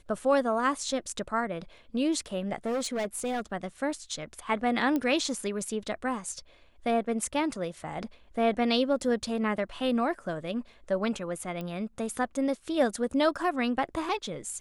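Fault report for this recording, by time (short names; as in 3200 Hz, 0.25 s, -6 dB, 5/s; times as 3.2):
2.56–3.41 clipped -26.5 dBFS
4.96 pop -17 dBFS
11.61 pop -24 dBFS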